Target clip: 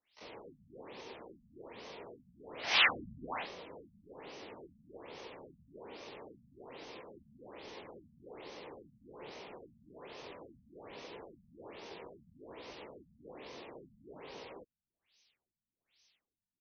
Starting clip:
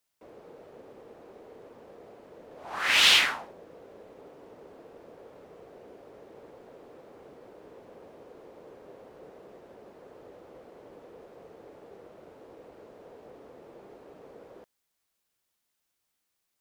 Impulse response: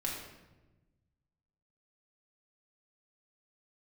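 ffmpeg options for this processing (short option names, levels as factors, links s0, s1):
-filter_complex "[0:a]asplit=3[s0][s1][s2];[s1]asetrate=37084,aresample=44100,atempo=1.18921,volume=0.501[s3];[s2]asetrate=88200,aresample=44100,atempo=0.5,volume=0.562[s4];[s0][s3][s4]amix=inputs=3:normalize=0,aexciter=amount=3.7:drive=8.5:freq=2100,afftfilt=real='re*lt(b*sr/1024,220*pow(6500/220,0.5+0.5*sin(2*PI*1.2*pts/sr)))':imag='im*lt(b*sr/1024,220*pow(6500/220,0.5+0.5*sin(2*PI*1.2*pts/sr)))':win_size=1024:overlap=0.75,volume=0.794"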